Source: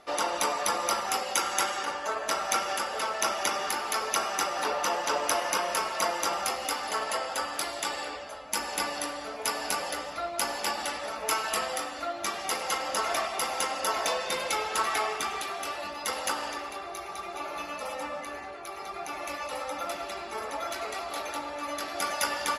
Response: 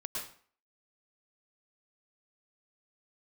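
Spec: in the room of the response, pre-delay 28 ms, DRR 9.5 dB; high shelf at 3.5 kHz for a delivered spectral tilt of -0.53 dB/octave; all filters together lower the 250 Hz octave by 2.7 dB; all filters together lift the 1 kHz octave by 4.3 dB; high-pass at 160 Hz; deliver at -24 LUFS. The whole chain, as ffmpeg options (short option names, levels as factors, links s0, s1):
-filter_complex "[0:a]highpass=160,equalizer=f=250:t=o:g=-3.5,equalizer=f=1000:t=o:g=6.5,highshelf=f=3500:g=-8,asplit=2[s0][s1];[1:a]atrim=start_sample=2205,adelay=28[s2];[s1][s2]afir=irnorm=-1:irlink=0,volume=0.282[s3];[s0][s3]amix=inputs=2:normalize=0,volume=1.68"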